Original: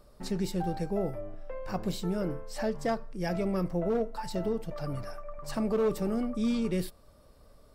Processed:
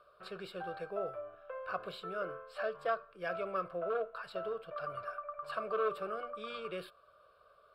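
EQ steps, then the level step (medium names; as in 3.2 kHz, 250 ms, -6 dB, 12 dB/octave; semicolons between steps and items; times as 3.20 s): band-pass filter 1.4 kHz, Q 1.5; static phaser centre 1.3 kHz, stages 8; +7.5 dB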